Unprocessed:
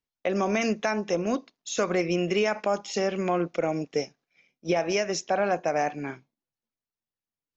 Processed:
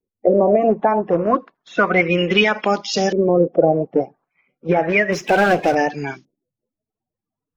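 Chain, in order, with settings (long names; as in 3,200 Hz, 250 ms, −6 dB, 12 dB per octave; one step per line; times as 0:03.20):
spectral magnitudes quantised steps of 30 dB
auto-filter low-pass saw up 0.32 Hz 400–5,900 Hz
0:05.12–0:05.75: power curve on the samples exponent 0.7
level +8 dB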